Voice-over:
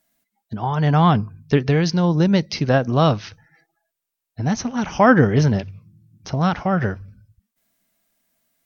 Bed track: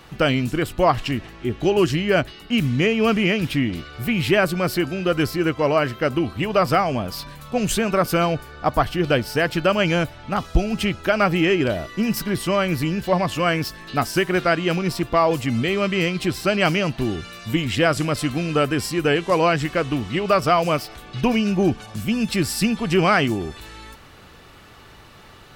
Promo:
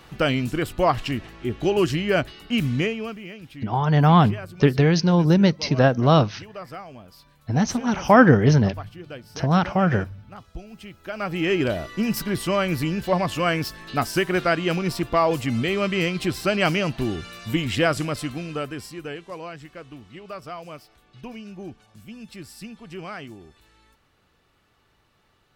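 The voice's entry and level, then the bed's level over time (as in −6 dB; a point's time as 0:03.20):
3.10 s, 0.0 dB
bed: 0:02.79 −2.5 dB
0:03.20 −19 dB
0:10.89 −19 dB
0:11.56 −2 dB
0:17.85 −2 dB
0:19.45 −18.5 dB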